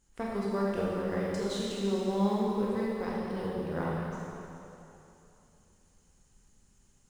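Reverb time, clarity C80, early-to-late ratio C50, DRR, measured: 2.9 s, -1.0 dB, -3.0 dB, -5.5 dB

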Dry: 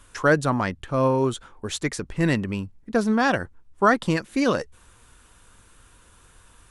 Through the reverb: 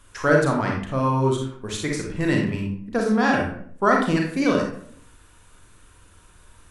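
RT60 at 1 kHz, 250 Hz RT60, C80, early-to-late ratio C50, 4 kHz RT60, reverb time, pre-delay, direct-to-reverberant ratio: 0.55 s, 0.75 s, 7.5 dB, 3.0 dB, 0.40 s, 0.60 s, 34 ms, -0.5 dB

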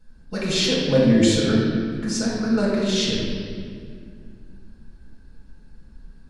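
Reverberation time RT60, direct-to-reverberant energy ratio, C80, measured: 2.2 s, -7.0 dB, 0.5 dB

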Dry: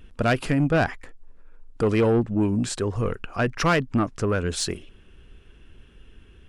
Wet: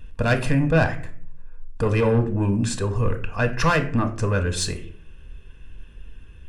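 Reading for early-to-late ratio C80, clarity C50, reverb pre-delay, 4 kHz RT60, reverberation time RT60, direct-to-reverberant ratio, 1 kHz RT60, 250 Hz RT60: 16.0 dB, 12.5 dB, 4 ms, 0.30 s, 0.50 s, 7.0 dB, 0.45 s, 0.65 s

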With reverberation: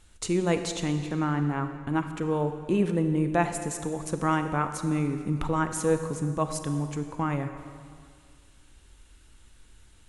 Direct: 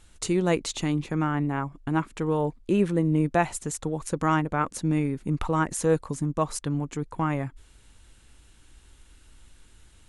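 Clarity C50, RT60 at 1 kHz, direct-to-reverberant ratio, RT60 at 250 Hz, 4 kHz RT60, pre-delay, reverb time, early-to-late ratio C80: 8.5 dB, 2.1 s, 7.5 dB, 2.0 s, 1.8 s, 29 ms, 2.1 s, 9.0 dB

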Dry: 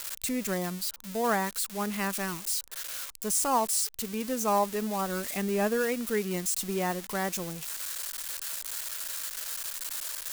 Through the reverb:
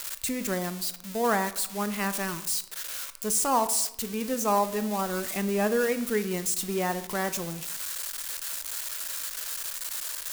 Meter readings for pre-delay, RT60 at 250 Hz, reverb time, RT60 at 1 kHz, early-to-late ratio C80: 18 ms, 0.85 s, 0.80 s, 0.80 s, 16.5 dB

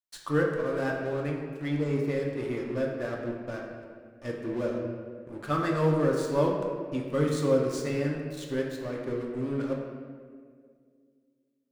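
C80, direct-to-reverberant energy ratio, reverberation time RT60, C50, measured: 4.0 dB, -1.5 dB, 2.0 s, 2.5 dB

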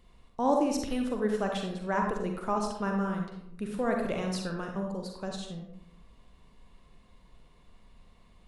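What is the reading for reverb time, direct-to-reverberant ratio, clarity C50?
0.75 s, 1.5 dB, 2.5 dB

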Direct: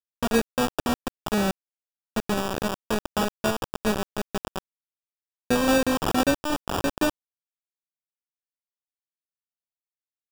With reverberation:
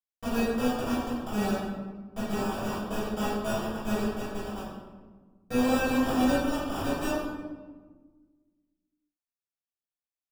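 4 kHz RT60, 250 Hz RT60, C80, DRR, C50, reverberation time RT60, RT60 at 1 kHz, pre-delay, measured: 0.80 s, 2.1 s, 2.0 dB, -15.0 dB, -1.5 dB, 1.4 s, 1.3 s, 3 ms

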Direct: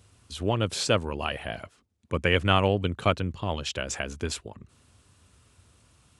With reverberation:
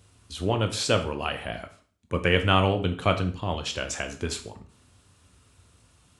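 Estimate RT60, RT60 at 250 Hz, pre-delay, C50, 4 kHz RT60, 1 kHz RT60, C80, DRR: 0.45 s, 0.45 s, 5 ms, 11.5 dB, 0.40 s, 0.45 s, 16.0 dB, 6.0 dB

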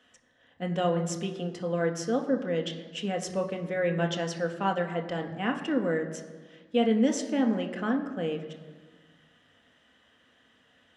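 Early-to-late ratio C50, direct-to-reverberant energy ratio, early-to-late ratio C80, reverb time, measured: 10.0 dB, 3.0 dB, 11.0 dB, 1.4 s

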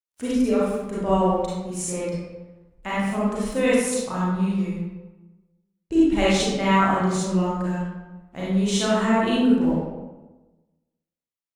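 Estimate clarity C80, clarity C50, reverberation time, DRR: 0.5 dB, -3.5 dB, 1.1 s, -8.5 dB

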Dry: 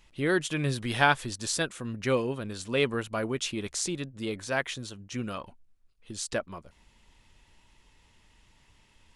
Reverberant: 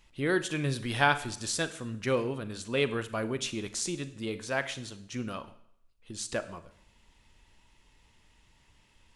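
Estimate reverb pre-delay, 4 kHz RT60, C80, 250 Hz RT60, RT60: 35 ms, 0.65 s, 17.5 dB, 0.65 s, 0.70 s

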